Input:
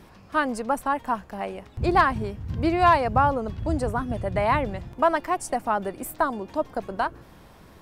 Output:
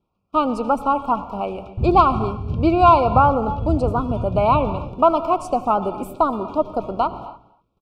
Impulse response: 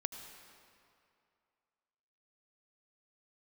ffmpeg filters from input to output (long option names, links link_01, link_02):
-filter_complex "[0:a]aemphasis=mode=reproduction:type=cd,agate=range=-30dB:threshold=-44dB:ratio=16:detection=peak,asuperstop=centerf=1800:order=20:qfactor=2.1,asplit=2[link_01][link_02];[link_02]adelay=244.9,volume=-20dB,highshelf=frequency=4000:gain=-5.51[link_03];[link_01][link_03]amix=inputs=2:normalize=0,asplit=2[link_04][link_05];[1:a]atrim=start_sample=2205,afade=type=out:start_time=0.36:duration=0.01,atrim=end_sample=16317,lowpass=5500[link_06];[link_05][link_06]afir=irnorm=-1:irlink=0,volume=0.5dB[link_07];[link_04][link_07]amix=inputs=2:normalize=0"